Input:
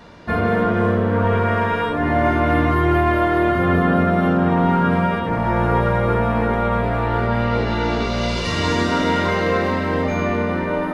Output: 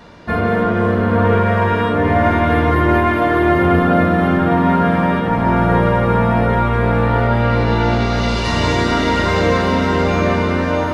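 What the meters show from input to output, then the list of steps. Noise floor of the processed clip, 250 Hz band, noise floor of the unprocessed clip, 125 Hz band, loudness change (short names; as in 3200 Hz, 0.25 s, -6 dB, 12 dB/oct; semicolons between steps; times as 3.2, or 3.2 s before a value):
-18 dBFS, +3.5 dB, -23 dBFS, +4.0 dB, +3.5 dB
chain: diffused feedback echo 0.735 s, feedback 48%, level -5 dB; gain +2 dB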